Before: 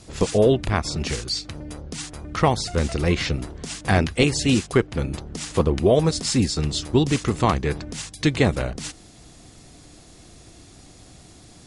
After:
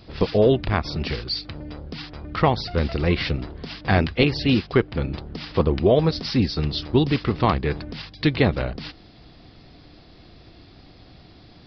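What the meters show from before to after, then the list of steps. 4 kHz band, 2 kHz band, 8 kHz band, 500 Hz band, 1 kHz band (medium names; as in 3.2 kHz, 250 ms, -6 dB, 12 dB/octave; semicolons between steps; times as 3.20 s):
-0.5 dB, 0.0 dB, under -20 dB, 0.0 dB, 0.0 dB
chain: resampled via 11.025 kHz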